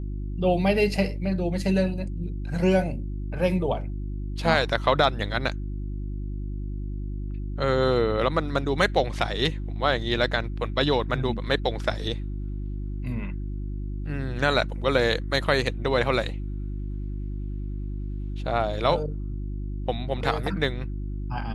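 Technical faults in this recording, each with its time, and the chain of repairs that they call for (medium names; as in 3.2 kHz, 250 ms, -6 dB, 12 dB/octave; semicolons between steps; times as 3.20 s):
hum 50 Hz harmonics 7 -31 dBFS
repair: de-hum 50 Hz, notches 7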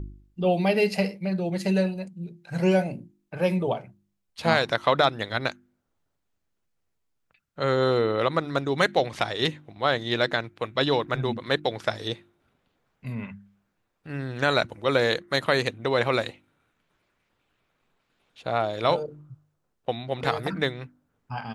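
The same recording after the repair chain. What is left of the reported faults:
nothing left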